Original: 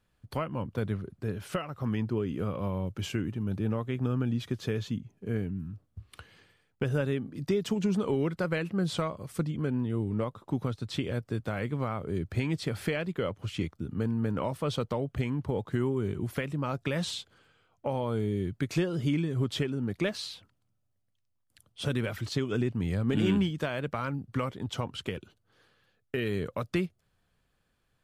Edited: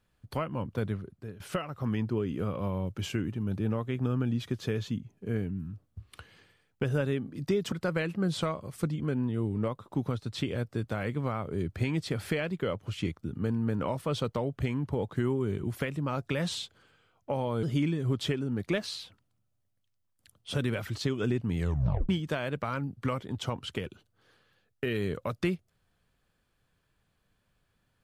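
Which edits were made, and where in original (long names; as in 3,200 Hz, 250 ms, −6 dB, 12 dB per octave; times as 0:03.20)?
0:00.84–0:01.40: fade out, to −14 dB
0:07.72–0:08.28: remove
0:18.19–0:18.94: remove
0:22.90: tape stop 0.50 s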